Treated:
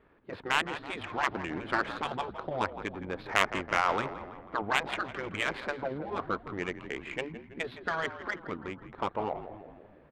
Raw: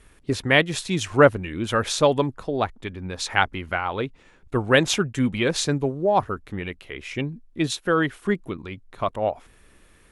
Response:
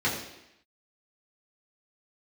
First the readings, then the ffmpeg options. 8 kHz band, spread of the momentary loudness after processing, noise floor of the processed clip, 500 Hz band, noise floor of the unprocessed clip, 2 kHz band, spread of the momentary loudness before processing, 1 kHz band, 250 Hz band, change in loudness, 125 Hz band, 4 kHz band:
-16.0 dB, 11 LU, -56 dBFS, -13.0 dB, -55 dBFS, -6.5 dB, 14 LU, -5.5 dB, -13.5 dB, -9.5 dB, -16.5 dB, -10.0 dB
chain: -filter_complex "[0:a]afftfilt=real='re*lt(hypot(re,im),0.282)':imag='im*lt(hypot(re,im),0.282)':win_size=1024:overlap=0.75,highpass=f=610:p=1,acrossover=split=2600[a][b];[b]acompressor=threshold=-35dB:ratio=4:attack=1:release=60[c];[a][c]amix=inputs=2:normalize=0,aresample=11025,aresample=44100,asplit=8[d][e][f][g][h][i][j][k];[e]adelay=164,afreqshift=-56,volume=-10dB[l];[f]adelay=328,afreqshift=-112,volume=-14.7dB[m];[g]adelay=492,afreqshift=-168,volume=-19.5dB[n];[h]adelay=656,afreqshift=-224,volume=-24.2dB[o];[i]adelay=820,afreqshift=-280,volume=-28.9dB[p];[j]adelay=984,afreqshift=-336,volume=-33.7dB[q];[k]adelay=1148,afreqshift=-392,volume=-38.4dB[r];[d][l][m][n][o][p][q][r]amix=inputs=8:normalize=0,adynamicsmooth=sensitivity=1.5:basefreq=980,volume=4.5dB"

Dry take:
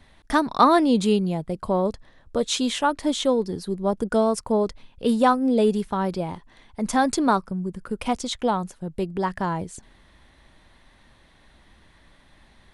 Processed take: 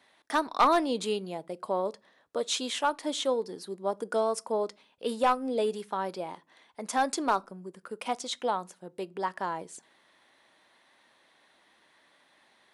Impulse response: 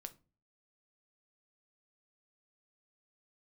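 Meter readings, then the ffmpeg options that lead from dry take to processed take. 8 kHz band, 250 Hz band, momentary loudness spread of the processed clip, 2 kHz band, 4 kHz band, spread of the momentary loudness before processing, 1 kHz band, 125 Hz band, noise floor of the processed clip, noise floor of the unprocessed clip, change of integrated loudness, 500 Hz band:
-4.5 dB, -13.5 dB, 13 LU, -5.0 dB, -4.5 dB, 12 LU, -5.5 dB, -17.5 dB, -66 dBFS, -56 dBFS, -7.0 dB, -6.5 dB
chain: -filter_complex "[0:a]highpass=400,aeval=exprs='clip(val(0),-1,0.251)':c=same,asplit=2[a][b];[1:a]atrim=start_sample=2205[c];[b][c]afir=irnorm=-1:irlink=0,volume=-2.5dB[d];[a][d]amix=inputs=2:normalize=0,volume=-7.5dB"

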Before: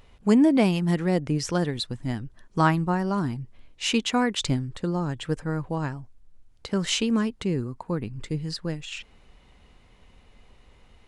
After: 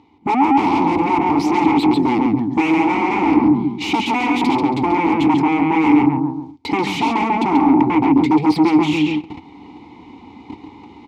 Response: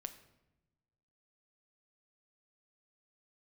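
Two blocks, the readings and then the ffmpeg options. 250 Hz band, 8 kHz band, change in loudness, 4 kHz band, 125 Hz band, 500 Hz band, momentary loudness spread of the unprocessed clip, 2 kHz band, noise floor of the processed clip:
+11.0 dB, n/a, +9.5 dB, +2.5 dB, +0.5 dB, +6.5 dB, 12 LU, +10.0 dB, -43 dBFS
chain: -filter_complex "[0:a]asplit=2[a][b];[b]adelay=138,lowpass=f=1.8k:p=1,volume=-4dB,asplit=2[c][d];[d]adelay=138,lowpass=f=1.8k:p=1,volume=0.36,asplit=2[e][f];[f]adelay=138,lowpass=f=1.8k:p=1,volume=0.36,asplit=2[g][h];[h]adelay=138,lowpass=f=1.8k:p=1,volume=0.36,asplit=2[i][j];[j]adelay=138,lowpass=f=1.8k:p=1,volume=0.36[k];[a][c][e][g][i][k]amix=inputs=6:normalize=0,agate=range=-18dB:threshold=-46dB:ratio=16:detection=peak,asplit=2[l][m];[m]highpass=f=720:p=1,volume=31dB,asoftclip=type=tanh:threshold=-4.5dB[n];[l][n]amix=inputs=2:normalize=0,lowpass=f=1.5k:p=1,volume=-6dB,highpass=66,aexciter=amount=9.6:drive=5.9:freq=3.8k,aemphasis=mode=reproduction:type=riaa,dynaudnorm=f=110:g=7:m=11dB,aeval=exprs='0.944*sin(PI/2*4.47*val(0)/0.944)':c=same,asplit=3[o][p][q];[o]bandpass=f=300:t=q:w=8,volume=0dB[r];[p]bandpass=f=870:t=q:w=8,volume=-6dB[s];[q]bandpass=f=2.24k:t=q:w=8,volume=-9dB[t];[r][s][t]amix=inputs=3:normalize=0,equalizer=f=87:t=o:w=0.29:g=7.5"

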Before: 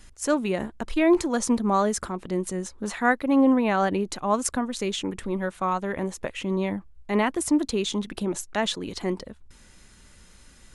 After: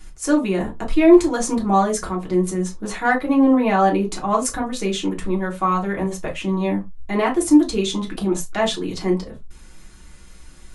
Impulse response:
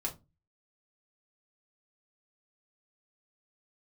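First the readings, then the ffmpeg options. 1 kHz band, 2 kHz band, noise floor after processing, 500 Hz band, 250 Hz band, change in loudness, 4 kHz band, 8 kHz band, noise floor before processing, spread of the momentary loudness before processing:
+6.0 dB, +3.5 dB, -42 dBFS, +5.5 dB, +6.5 dB, +5.5 dB, +3.0 dB, +3.5 dB, -53 dBFS, 10 LU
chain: -filter_complex "[0:a]acontrast=54[a];[1:a]atrim=start_sample=2205,afade=t=out:st=0.15:d=0.01,atrim=end_sample=7056[b];[a][b]afir=irnorm=-1:irlink=0,volume=-3.5dB"

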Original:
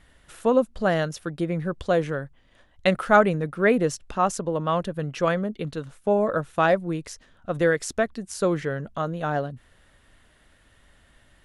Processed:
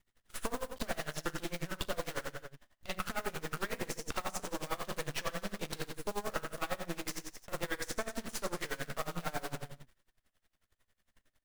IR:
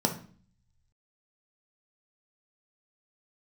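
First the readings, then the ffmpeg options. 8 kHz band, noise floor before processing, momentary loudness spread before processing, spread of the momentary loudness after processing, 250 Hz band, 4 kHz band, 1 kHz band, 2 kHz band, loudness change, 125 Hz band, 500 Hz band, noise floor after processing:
-4.5 dB, -59 dBFS, 10 LU, 6 LU, -17.0 dB, -4.0 dB, -14.5 dB, -12.0 dB, -15.0 dB, -16.0 dB, -18.0 dB, -84 dBFS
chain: -filter_complex "[0:a]acrossover=split=3000[a][b];[a]alimiter=limit=-15dB:level=0:latency=1[c];[c][b]amix=inputs=2:normalize=0,acrusher=bits=7:dc=4:mix=0:aa=0.000001,flanger=delay=8.3:depth=5.6:regen=-37:speed=0.41:shape=sinusoidal,agate=range=-26dB:threshold=-54dB:ratio=16:detection=peak,acompressor=threshold=-35dB:ratio=6,aecho=1:1:40|88|145.6|214.7|297.7:0.631|0.398|0.251|0.158|0.1,acrossover=split=780|3200[d][e][f];[d]acompressor=threshold=-48dB:ratio=4[g];[e]acompressor=threshold=-46dB:ratio=4[h];[f]acompressor=threshold=-51dB:ratio=4[i];[g][h][i]amix=inputs=3:normalize=0,aeval=exprs='max(val(0),0)':c=same,aeval=exprs='val(0)*pow(10,-22*(0.5-0.5*cos(2*PI*11*n/s))/20)':c=same,volume=16dB"

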